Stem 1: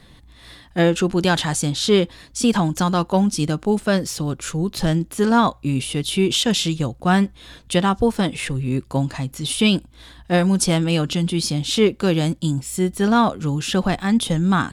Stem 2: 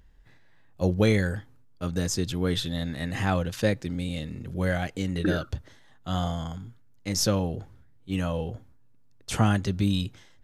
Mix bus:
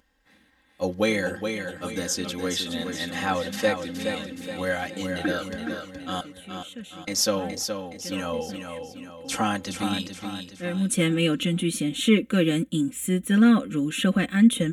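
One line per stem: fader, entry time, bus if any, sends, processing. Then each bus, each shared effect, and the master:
-1.0 dB, 0.30 s, no send, no echo send, HPF 140 Hz 12 dB/oct; fixed phaser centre 2100 Hz, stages 4; auto duck -20 dB, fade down 0.85 s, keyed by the second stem
+1.0 dB, 0.00 s, muted 6.21–7.07, no send, echo send -6.5 dB, HPF 440 Hz 6 dB/oct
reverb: off
echo: feedback echo 0.42 s, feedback 45%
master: comb 3.8 ms, depth 78%

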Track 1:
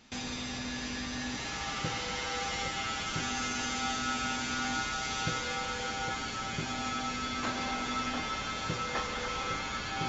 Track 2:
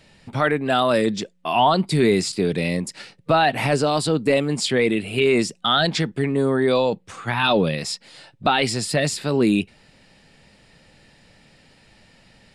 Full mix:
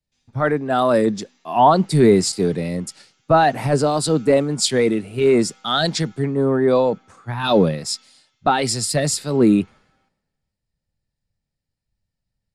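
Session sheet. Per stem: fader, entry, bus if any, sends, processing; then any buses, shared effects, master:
-4.0 dB, 0.00 s, no send, echo send -22.5 dB, Chebyshev high-pass 230 Hz, order 8; auto duck -12 dB, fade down 0.50 s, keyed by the second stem
+2.5 dB, 0.00 s, no send, no echo send, bell 2800 Hz -10 dB 1.2 oct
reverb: off
echo: echo 0.424 s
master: three-band expander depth 100%

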